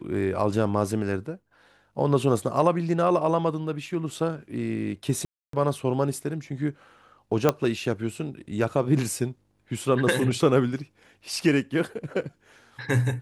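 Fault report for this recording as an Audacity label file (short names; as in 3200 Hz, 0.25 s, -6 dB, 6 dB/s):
5.250000	5.530000	gap 0.283 s
7.490000	7.490000	pop -6 dBFS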